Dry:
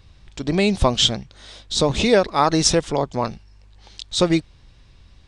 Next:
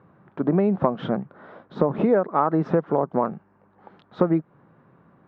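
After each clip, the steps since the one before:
elliptic band-pass filter 160–1,400 Hz, stop band 80 dB
downward compressor 4 to 1, threshold −24 dBFS, peak gain reduction 11 dB
level +6.5 dB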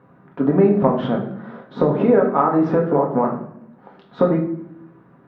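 convolution reverb RT60 0.70 s, pre-delay 4 ms, DRR −1 dB
level +1 dB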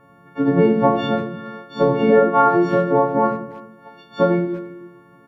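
every partial snapped to a pitch grid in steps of 4 semitones
far-end echo of a speakerphone 330 ms, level −20 dB

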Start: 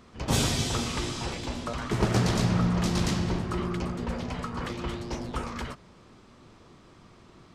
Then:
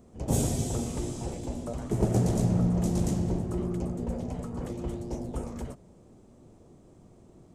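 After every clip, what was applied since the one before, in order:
flat-topped bell 2,300 Hz −15.5 dB 2.7 octaves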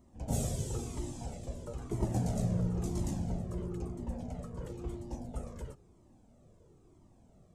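flanger whose copies keep moving one way falling 1 Hz
level −2.5 dB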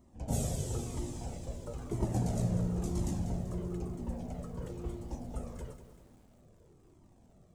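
feedback echo at a low word length 193 ms, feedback 55%, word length 10 bits, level −11 dB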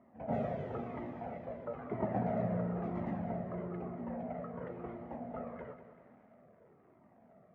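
loudspeaker in its box 210–2,100 Hz, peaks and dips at 220 Hz +3 dB, 330 Hz −7 dB, 660 Hz +8 dB, 1,300 Hz +5 dB, 2,000 Hz +8 dB
level +1.5 dB

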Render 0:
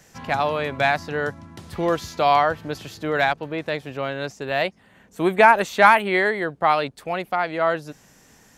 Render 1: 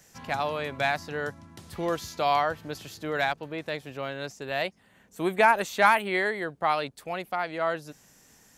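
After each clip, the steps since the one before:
high-shelf EQ 4,900 Hz +7.5 dB
level −7 dB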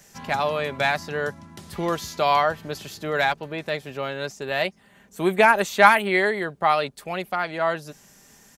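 comb filter 5 ms, depth 33%
level +4.5 dB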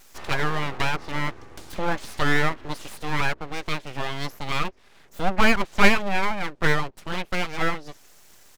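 treble cut that deepens with the level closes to 1,400 Hz, closed at −19 dBFS
tape wow and flutter 28 cents
full-wave rectification
level +2.5 dB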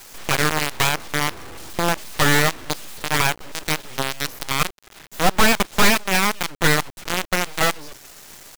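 in parallel at +3 dB: downward compressor 6 to 1, threshold −26 dBFS, peak gain reduction 17 dB
on the sum: log-companded quantiser 2 bits
level −8 dB

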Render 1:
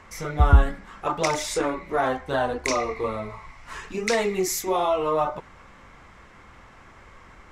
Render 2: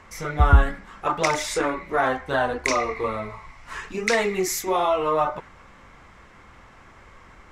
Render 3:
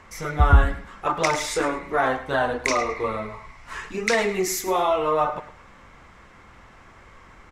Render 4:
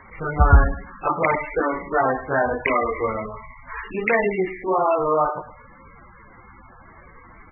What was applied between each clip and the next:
dynamic equaliser 1,700 Hz, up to +5 dB, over −41 dBFS, Q 1
repeating echo 106 ms, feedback 24%, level −14 dB
level +2.5 dB; MP3 8 kbit/s 22,050 Hz

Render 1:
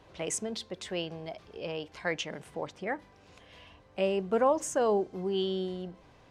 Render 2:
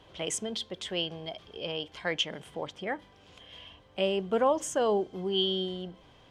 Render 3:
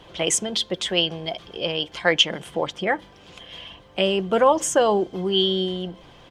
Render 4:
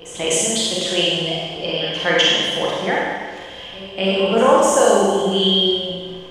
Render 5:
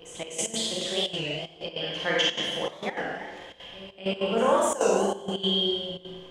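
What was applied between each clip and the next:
parametric band 3,200 Hz +13.5 dB 0.2 octaves
comb filter 5.8 ms, depth 33%; harmonic and percussive parts rebalanced percussive +5 dB; level +6.5 dB
echo ahead of the sound 250 ms −17 dB; four-comb reverb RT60 1.6 s, combs from 31 ms, DRR −5.5 dB; level −1.5 dB
gate pattern "xxx..x.xxxxxxx.x" 196 BPM −12 dB; wow of a warped record 33 1/3 rpm, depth 160 cents; level −9 dB

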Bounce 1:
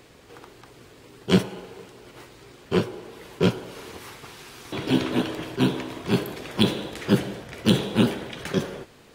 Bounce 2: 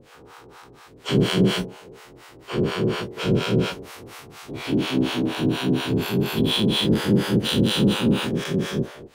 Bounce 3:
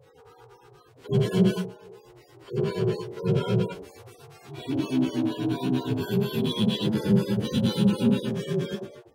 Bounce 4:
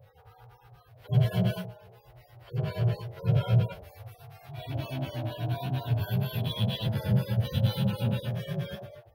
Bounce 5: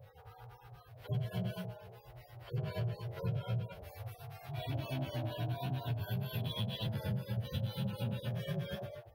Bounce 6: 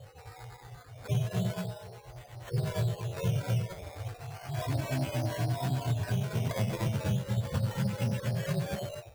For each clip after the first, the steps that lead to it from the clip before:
every bin's largest magnitude spread in time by 480 ms; two-band tremolo in antiphase 4.2 Hz, depth 100%, crossover 600 Hz; level −2.5 dB
harmonic-percussive split with one part muted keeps harmonic
drawn EQ curve 110 Hz 0 dB, 250 Hz −24 dB, 400 Hz −24 dB, 630 Hz −2 dB, 1,000 Hz −13 dB, 1,800 Hz −9 dB, 3,400 Hz −11 dB, 5,000 Hz −14 dB, 7,500 Hz −23 dB, 13,000 Hz −3 dB; level +7 dB
downward compressor 6 to 1, threshold −34 dBFS, peak gain reduction 15.5 dB
sample-and-hold swept by an LFO 12×, swing 60% 0.34 Hz; level +6.5 dB

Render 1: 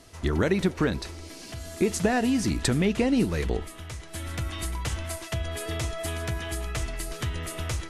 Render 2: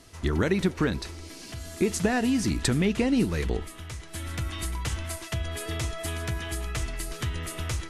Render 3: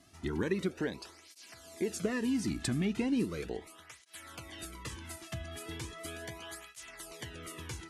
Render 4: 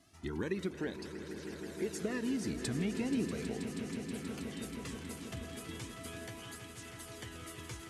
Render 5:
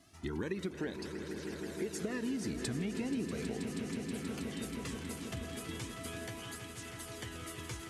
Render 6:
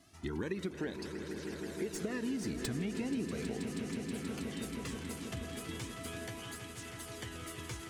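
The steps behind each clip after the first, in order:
parametric band 620 Hz −3.5 dB 0.86 octaves
through-zero flanger with one copy inverted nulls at 0.37 Hz, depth 2.2 ms; level −6 dB
echo that builds up and dies away 160 ms, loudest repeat 5, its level −12.5 dB; level −4 dB
downward compressor 2.5 to 1, threshold −37 dBFS, peak gain reduction 5.5 dB; level +2.5 dB
stylus tracing distortion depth 0.028 ms

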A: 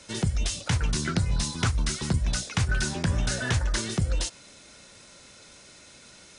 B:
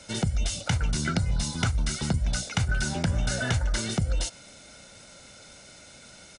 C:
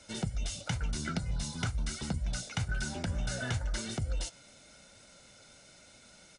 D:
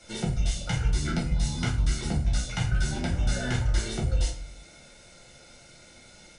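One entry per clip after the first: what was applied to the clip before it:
parametric band 320 Hz +4.5 dB 1.5 octaves; comb filter 1.4 ms, depth 48%; downward compressor 4 to 1, threshold −22 dBFS, peak gain reduction 5 dB
flanger 1 Hz, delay 2.6 ms, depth 6 ms, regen −60%; level −3.5 dB
rectangular room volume 40 cubic metres, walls mixed, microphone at 0.91 metres

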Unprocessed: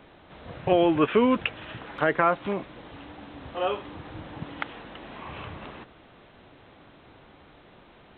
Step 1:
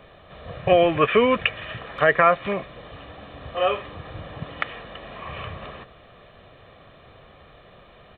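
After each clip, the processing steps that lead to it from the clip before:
comb filter 1.7 ms, depth 58%
dynamic equaliser 2,100 Hz, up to +6 dB, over −44 dBFS, Q 1.6
level +2.5 dB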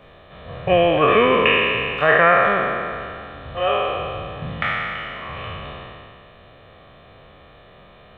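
peak hold with a decay on every bin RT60 2.34 s
level −1 dB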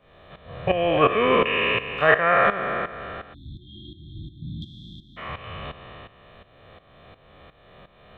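shaped tremolo saw up 2.8 Hz, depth 80%
time-frequency box erased 0:03.34–0:05.17, 360–3,200 Hz

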